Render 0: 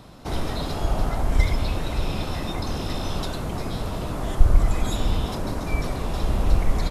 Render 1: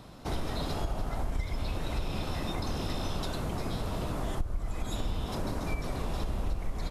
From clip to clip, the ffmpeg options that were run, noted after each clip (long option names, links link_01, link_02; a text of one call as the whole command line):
ffmpeg -i in.wav -af "acompressor=threshold=-24dB:ratio=6,volume=-3.5dB" out.wav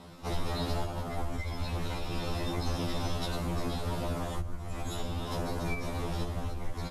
ffmpeg -i in.wav -af "afftfilt=real='re*2*eq(mod(b,4),0)':imag='im*2*eq(mod(b,4),0)':win_size=2048:overlap=0.75,volume=3dB" out.wav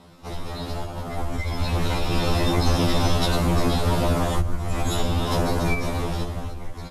ffmpeg -i in.wav -af "dynaudnorm=framelen=310:gausssize=9:maxgain=12dB" out.wav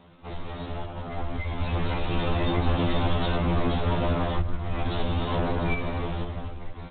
ffmpeg -i in.wav -af "volume=-3.5dB" -ar 8000 -c:a adpcm_g726 -b:a 24k out.wav